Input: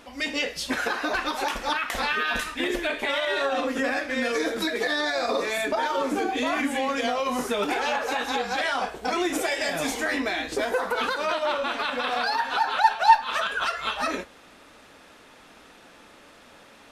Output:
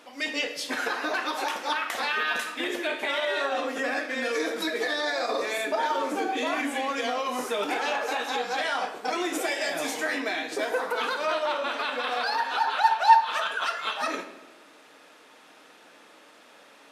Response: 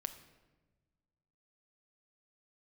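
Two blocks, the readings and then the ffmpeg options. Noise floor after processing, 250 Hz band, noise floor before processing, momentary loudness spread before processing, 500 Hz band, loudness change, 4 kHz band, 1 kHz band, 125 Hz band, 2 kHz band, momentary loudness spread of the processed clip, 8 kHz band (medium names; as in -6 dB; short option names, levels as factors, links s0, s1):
-54 dBFS, -4.5 dB, -51 dBFS, 3 LU, -2.0 dB, -1.5 dB, -1.5 dB, -1.0 dB, under -10 dB, -1.5 dB, 4 LU, -2.0 dB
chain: -filter_complex "[0:a]highpass=290[s0];[1:a]atrim=start_sample=2205,asetrate=43659,aresample=44100[s1];[s0][s1]afir=irnorm=-1:irlink=0"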